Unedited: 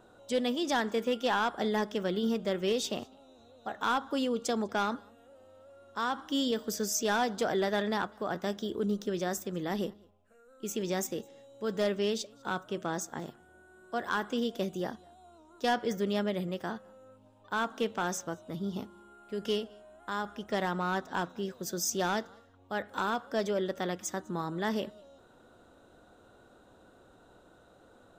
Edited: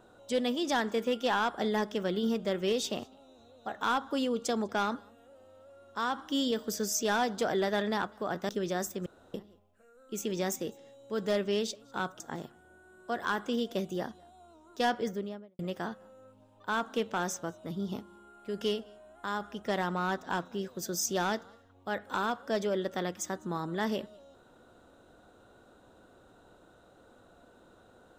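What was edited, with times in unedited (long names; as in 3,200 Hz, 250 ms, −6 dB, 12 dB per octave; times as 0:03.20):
0:08.49–0:09.00: remove
0:09.57–0:09.85: fill with room tone
0:12.71–0:13.04: remove
0:15.73–0:16.43: fade out and dull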